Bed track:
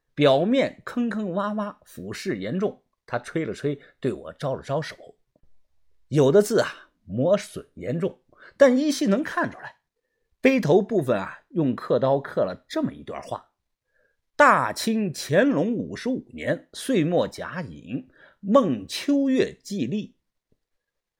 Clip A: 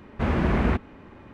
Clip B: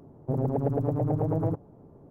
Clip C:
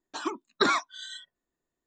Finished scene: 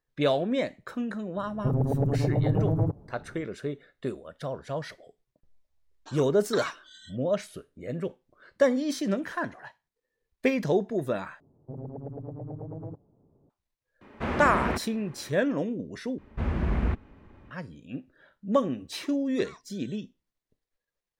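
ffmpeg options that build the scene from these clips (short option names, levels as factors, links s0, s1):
-filter_complex "[2:a]asplit=2[s0][s1];[3:a]asplit=2[s2][s3];[1:a]asplit=2[s4][s5];[0:a]volume=0.473[s6];[s0]lowshelf=f=130:g=11.5[s7];[s1]tiltshelf=f=1400:g=6[s8];[s4]lowshelf=f=170:g=-10.5[s9];[s5]lowshelf=f=100:g=11.5[s10];[s3]acompressor=threshold=0.0398:ratio=6:attack=3.2:release=140:knee=1:detection=peak[s11];[s6]asplit=3[s12][s13][s14];[s12]atrim=end=11.404[s15];[s8]atrim=end=2.1,asetpts=PTS-STARTPTS,volume=0.133[s16];[s13]atrim=start=13.496:end=16.184[s17];[s10]atrim=end=1.33,asetpts=PTS-STARTPTS,volume=0.335[s18];[s14]atrim=start=17.506[s19];[s7]atrim=end=2.1,asetpts=PTS-STARTPTS,volume=0.75,afade=t=in:d=0.004:c=hsin,afade=t=out:st=2.096:d=0.004:c=hsin,adelay=1360[s20];[s2]atrim=end=1.86,asetpts=PTS-STARTPTS,volume=0.316,afade=t=in:d=0.004:c=hsin,afade=t=out:st=1.856:d=0.004:c=hsin,adelay=5920[s21];[s9]atrim=end=1.33,asetpts=PTS-STARTPTS,volume=0.794,afade=t=in:d=0.004:c=hsin,afade=t=out:st=1.326:d=0.004:c=hsin,adelay=14010[s22];[s11]atrim=end=1.86,asetpts=PTS-STARTPTS,volume=0.141,afade=t=in:d=0.004:c=hsin,afade=t=out:st=1.856:d=0.004:c=hsin,adelay=18780[s23];[s15][s16]acrossfade=d=0.004:c1=hsin:c2=hsin[s24];[s24][s17]acrossfade=d=0.004:c1=hsin:c2=hsin[s25];[s25][s18]acrossfade=d=0.004:c1=hsin:c2=hsin[s26];[s26][s19]acrossfade=d=0.004:c1=hsin:c2=hsin[s27];[s27][s20][s21][s22][s23]amix=inputs=5:normalize=0"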